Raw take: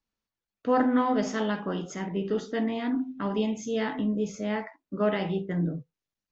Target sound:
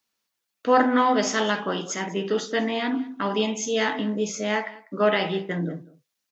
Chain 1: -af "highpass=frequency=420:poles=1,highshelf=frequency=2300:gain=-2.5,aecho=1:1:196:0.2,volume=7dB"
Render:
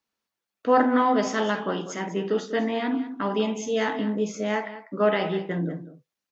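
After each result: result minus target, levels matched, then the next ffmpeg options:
4,000 Hz band −5.0 dB; echo-to-direct +6.5 dB
-af "highpass=frequency=420:poles=1,highshelf=frequency=2300:gain=6.5,aecho=1:1:196:0.2,volume=7dB"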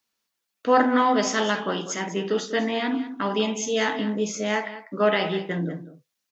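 echo-to-direct +6.5 dB
-af "highpass=frequency=420:poles=1,highshelf=frequency=2300:gain=6.5,aecho=1:1:196:0.0944,volume=7dB"

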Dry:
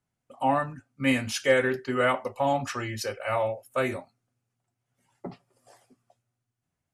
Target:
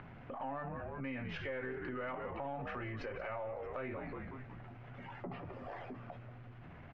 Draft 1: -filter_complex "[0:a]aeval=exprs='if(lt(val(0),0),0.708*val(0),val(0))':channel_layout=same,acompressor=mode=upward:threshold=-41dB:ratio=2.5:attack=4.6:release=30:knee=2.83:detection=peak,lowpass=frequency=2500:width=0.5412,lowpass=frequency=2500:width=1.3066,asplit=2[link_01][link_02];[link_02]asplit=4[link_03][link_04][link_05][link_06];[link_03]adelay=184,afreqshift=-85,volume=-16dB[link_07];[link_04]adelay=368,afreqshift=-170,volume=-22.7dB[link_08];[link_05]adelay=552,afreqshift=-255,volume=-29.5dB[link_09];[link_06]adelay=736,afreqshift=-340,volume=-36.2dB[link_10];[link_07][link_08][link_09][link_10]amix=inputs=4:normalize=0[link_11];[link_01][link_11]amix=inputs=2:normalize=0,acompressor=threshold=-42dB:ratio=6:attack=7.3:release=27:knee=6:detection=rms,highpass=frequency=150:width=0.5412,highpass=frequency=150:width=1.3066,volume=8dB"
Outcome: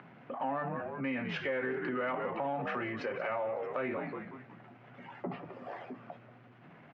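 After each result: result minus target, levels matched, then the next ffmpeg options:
125 Hz band −7.5 dB; downward compressor: peak gain reduction −7 dB
-filter_complex "[0:a]aeval=exprs='if(lt(val(0),0),0.708*val(0),val(0))':channel_layout=same,acompressor=mode=upward:threshold=-41dB:ratio=2.5:attack=4.6:release=30:knee=2.83:detection=peak,lowpass=frequency=2500:width=0.5412,lowpass=frequency=2500:width=1.3066,asplit=2[link_01][link_02];[link_02]asplit=4[link_03][link_04][link_05][link_06];[link_03]adelay=184,afreqshift=-85,volume=-16dB[link_07];[link_04]adelay=368,afreqshift=-170,volume=-22.7dB[link_08];[link_05]adelay=552,afreqshift=-255,volume=-29.5dB[link_09];[link_06]adelay=736,afreqshift=-340,volume=-36.2dB[link_10];[link_07][link_08][link_09][link_10]amix=inputs=4:normalize=0[link_11];[link_01][link_11]amix=inputs=2:normalize=0,acompressor=threshold=-42dB:ratio=6:attack=7.3:release=27:knee=6:detection=rms,volume=8dB"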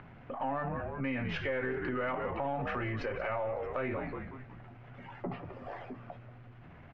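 downward compressor: peak gain reduction −7 dB
-filter_complex "[0:a]aeval=exprs='if(lt(val(0),0),0.708*val(0),val(0))':channel_layout=same,acompressor=mode=upward:threshold=-41dB:ratio=2.5:attack=4.6:release=30:knee=2.83:detection=peak,lowpass=frequency=2500:width=0.5412,lowpass=frequency=2500:width=1.3066,asplit=2[link_01][link_02];[link_02]asplit=4[link_03][link_04][link_05][link_06];[link_03]adelay=184,afreqshift=-85,volume=-16dB[link_07];[link_04]adelay=368,afreqshift=-170,volume=-22.7dB[link_08];[link_05]adelay=552,afreqshift=-255,volume=-29.5dB[link_09];[link_06]adelay=736,afreqshift=-340,volume=-36.2dB[link_10];[link_07][link_08][link_09][link_10]amix=inputs=4:normalize=0[link_11];[link_01][link_11]amix=inputs=2:normalize=0,acompressor=threshold=-50.5dB:ratio=6:attack=7.3:release=27:knee=6:detection=rms,volume=8dB"

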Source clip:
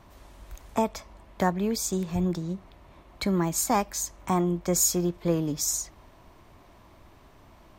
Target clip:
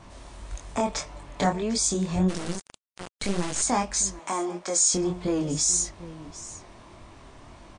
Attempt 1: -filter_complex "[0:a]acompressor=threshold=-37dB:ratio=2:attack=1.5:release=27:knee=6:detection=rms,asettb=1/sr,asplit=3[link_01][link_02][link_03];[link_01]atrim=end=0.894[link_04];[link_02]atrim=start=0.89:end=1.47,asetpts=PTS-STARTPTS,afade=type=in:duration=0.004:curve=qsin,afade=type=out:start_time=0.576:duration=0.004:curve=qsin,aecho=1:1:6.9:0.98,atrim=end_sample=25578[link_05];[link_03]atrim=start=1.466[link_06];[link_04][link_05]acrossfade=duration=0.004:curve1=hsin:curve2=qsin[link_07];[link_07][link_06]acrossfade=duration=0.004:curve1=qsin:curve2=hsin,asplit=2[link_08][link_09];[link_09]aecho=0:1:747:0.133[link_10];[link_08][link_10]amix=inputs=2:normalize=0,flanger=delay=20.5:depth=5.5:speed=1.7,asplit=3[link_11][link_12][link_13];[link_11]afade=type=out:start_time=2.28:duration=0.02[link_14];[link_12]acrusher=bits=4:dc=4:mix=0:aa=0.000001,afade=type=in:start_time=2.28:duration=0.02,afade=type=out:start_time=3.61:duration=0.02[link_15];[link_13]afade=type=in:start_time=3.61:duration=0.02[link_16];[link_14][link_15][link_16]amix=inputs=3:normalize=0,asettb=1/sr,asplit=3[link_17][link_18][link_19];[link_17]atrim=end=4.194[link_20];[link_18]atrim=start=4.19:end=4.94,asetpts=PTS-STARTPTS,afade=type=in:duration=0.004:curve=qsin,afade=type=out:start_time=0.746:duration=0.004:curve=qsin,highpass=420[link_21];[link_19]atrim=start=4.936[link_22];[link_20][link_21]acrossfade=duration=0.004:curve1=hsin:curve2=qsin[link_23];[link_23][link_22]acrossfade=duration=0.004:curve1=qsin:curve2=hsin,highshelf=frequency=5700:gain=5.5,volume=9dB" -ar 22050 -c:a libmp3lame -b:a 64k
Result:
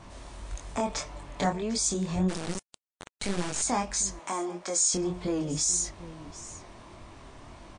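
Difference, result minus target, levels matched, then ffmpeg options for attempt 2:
downward compressor: peak gain reduction +3.5 dB
-filter_complex "[0:a]acompressor=threshold=-30dB:ratio=2:attack=1.5:release=27:knee=6:detection=rms,asettb=1/sr,asplit=3[link_01][link_02][link_03];[link_01]atrim=end=0.894[link_04];[link_02]atrim=start=0.89:end=1.47,asetpts=PTS-STARTPTS,afade=type=in:duration=0.004:curve=qsin,afade=type=out:start_time=0.576:duration=0.004:curve=qsin,aecho=1:1:6.9:0.98,atrim=end_sample=25578[link_05];[link_03]atrim=start=1.466[link_06];[link_04][link_05]acrossfade=duration=0.004:curve1=hsin:curve2=qsin[link_07];[link_07][link_06]acrossfade=duration=0.004:curve1=qsin:curve2=hsin,asplit=2[link_08][link_09];[link_09]aecho=0:1:747:0.133[link_10];[link_08][link_10]amix=inputs=2:normalize=0,flanger=delay=20.5:depth=5.5:speed=1.7,asplit=3[link_11][link_12][link_13];[link_11]afade=type=out:start_time=2.28:duration=0.02[link_14];[link_12]acrusher=bits=4:dc=4:mix=0:aa=0.000001,afade=type=in:start_time=2.28:duration=0.02,afade=type=out:start_time=3.61:duration=0.02[link_15];[link_13]afade=type=in:start_time=3.61:duration=0.02[link_16];[link_14][link_15][link_16]amix=inputs=3:normalize=0,asettb=1/sr,asplit=3[link_17][link_18][link_19];[link_17]atrim=end=4.194[link_20];[link_18]atrim=start=4.19:end=4.94,asetpts=PTS-STARTPTS,afade=type=in:duration=0.004:curve=qsin,afade=type=out:start_time=0.746:duration=0.004:curve=qsin,highpass=420[link_21];[link_19]atrim=start=4.936[link_22];[link_20][link_21]acrossfade=duration=0.004:curve1=hsin:curve2=qsin[link_23];[link_23][link_22]acrossfade=duration=0.004:curve1=qsin:curve2=hsin,highshelf=frequency=5700:gain=5.5,volume=9dB" -ar 22050 -c:a libmp3lame -b:a 64k

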